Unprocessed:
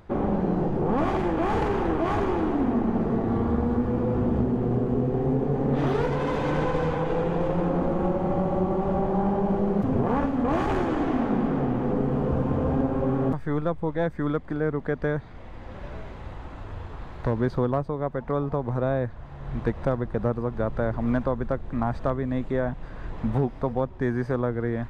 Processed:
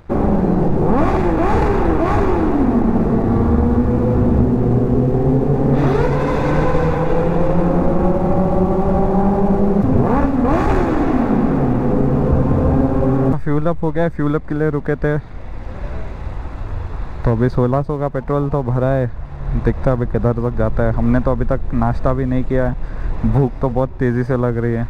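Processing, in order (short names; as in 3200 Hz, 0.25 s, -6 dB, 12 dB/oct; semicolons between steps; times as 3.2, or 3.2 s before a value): low shelf 95 Hz +8 dB; notch 3100 Hz, Q 5.5; crossover distortion -52.5 dBFS; gain +8 dB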